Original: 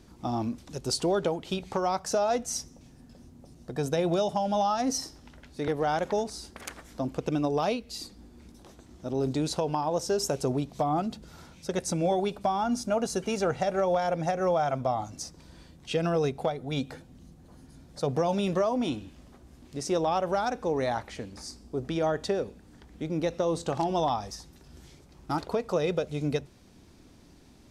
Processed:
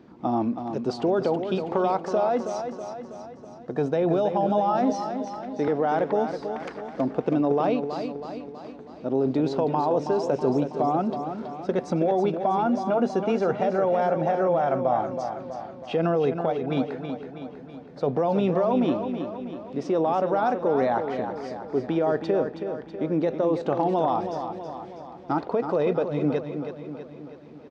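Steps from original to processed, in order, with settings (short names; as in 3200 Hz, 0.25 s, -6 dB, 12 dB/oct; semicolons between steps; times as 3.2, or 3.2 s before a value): HPF 210 Hz 12 dB/oct; in parallel at +1.5 dB: negative-ratio compressor -29 dBFS; on the sum: tape spacing loss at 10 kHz 38 dB; feedback echo 0.323 s, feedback 55%, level -8 dB; gain +1 dB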